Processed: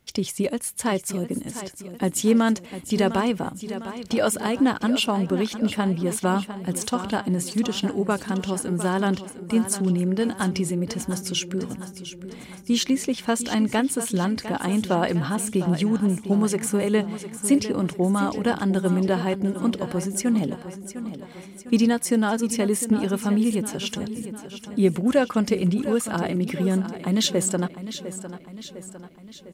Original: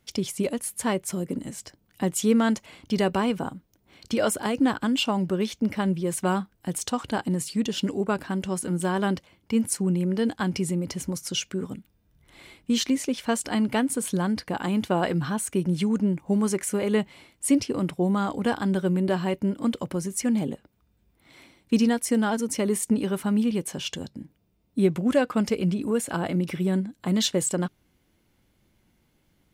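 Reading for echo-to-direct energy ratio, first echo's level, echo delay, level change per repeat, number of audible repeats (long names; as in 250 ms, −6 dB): −10.5 dB, −12.0 dB, 704 ms, −5.5 dB, 5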